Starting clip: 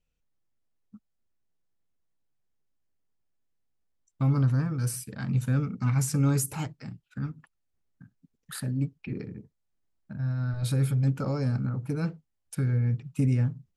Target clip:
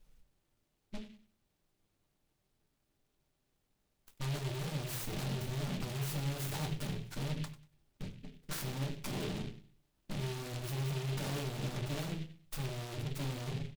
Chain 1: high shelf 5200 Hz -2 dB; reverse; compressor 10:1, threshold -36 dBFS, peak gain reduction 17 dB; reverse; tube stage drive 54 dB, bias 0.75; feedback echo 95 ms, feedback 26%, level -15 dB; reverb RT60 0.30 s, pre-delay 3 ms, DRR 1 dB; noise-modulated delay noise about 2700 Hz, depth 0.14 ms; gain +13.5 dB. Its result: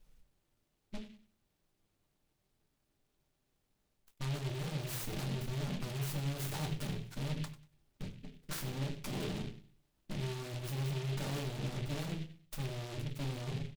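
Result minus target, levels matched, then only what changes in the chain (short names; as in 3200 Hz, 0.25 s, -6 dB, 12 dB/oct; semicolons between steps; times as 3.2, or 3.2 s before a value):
compressor: peak gain reduction +9 dB
change: compressor 10:1, threshold -26 dBFS, peak gain reduction 8 dB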